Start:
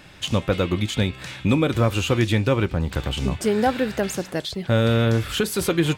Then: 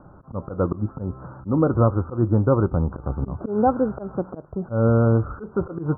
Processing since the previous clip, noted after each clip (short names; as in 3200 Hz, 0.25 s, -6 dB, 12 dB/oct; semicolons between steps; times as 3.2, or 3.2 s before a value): auto swell 0.144 s; steep low-pass 1400 Hz 96 dB/oct; gain +2 dB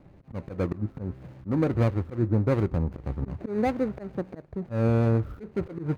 median filter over 41 samples; gain -4.5 dB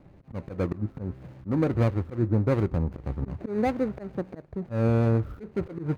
nothing audible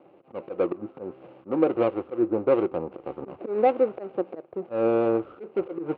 speaker cabinet 340–3300 Hz, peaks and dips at 350 Hz +9 dB, 510 Hz +8 dB, 760 Hz +6 dB, 1200 Hz +5 dB, 1800 Hz -7 dB, 2800 Hz +6 dB